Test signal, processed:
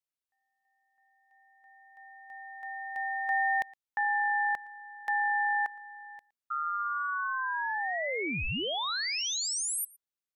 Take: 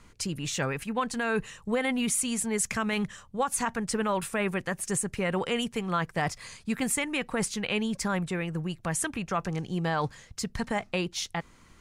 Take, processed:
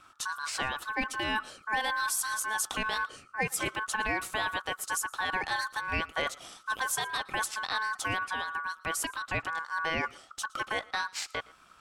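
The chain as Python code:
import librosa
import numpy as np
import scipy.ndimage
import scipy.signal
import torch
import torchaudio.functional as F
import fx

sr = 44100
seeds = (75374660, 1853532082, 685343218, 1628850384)

y = x + 10.0 ** (-23.5 / 20.0) * np.pad(x, (int(115 * sr / 1000.0), 0))[:len(x)]
y = y * np.sin(2.0 * np.pi * 1300.0 * np.arange(len(y)) / sr)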